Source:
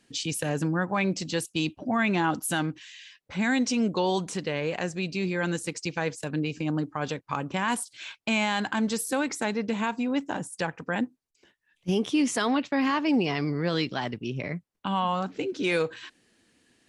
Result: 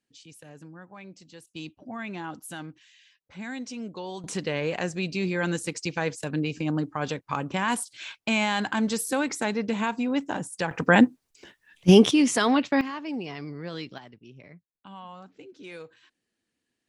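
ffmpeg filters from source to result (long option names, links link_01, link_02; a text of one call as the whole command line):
ffmpeg -i in.wav -af "asetnsamples=nb_out_samples=441:pad=0,asendcmd='1.47 volume volume -11dB;4.24 volume volume 1dB;10.71 volume volume 11.5dB;12.11 volume volume 3.5dB;12.81 volume volume -9dB;13.98 volume volume -16.5dB',volume=-19dB" out.wav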